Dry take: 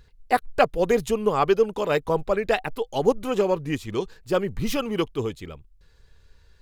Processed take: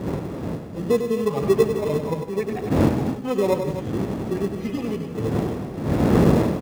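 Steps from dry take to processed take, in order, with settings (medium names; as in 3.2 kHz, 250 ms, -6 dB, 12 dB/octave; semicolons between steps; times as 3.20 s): harmonic-percussive separation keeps harmonic; wind noise 320 Hz -26 dBFS; high-pass 92 Hz 12 dB/octave; in parallel at -10 dB: sample-and-hold 29×; on the sum: multi-tap echo 98/157/258 ms -8/-15/-10.5 dB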